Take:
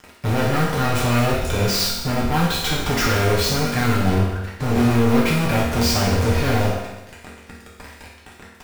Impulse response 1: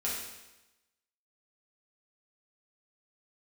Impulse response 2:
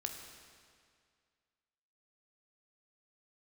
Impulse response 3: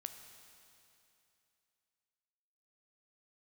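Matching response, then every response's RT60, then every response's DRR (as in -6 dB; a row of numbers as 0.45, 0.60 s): 1; 1.0, 2.1, 2.8 s; -7.0, 3.5, 6.5 dB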